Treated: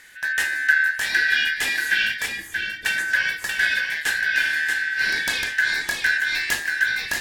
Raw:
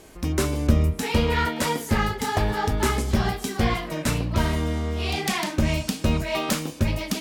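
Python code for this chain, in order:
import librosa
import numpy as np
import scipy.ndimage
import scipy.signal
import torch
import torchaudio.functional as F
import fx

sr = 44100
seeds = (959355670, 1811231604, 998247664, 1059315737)

p1 = fx.band_shuffle(x, sr, order='4123')
p2 = fx.cheby2_lowpass(p1, sr, hz=1500.0, order=4, stop_db=60, at=(2.26, 2.86))
y = p2 + fx.echo_single(p2, sr, ms=633, db=-5.5, dry=0)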